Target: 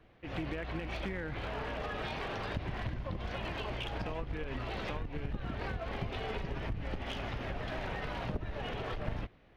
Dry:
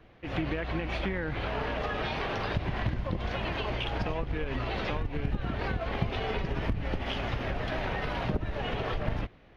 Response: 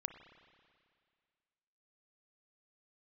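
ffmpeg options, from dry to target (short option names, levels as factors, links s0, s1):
-af "aeval=exprs='clip(val(0),-1,0.0398)':c=same,volume=0.531"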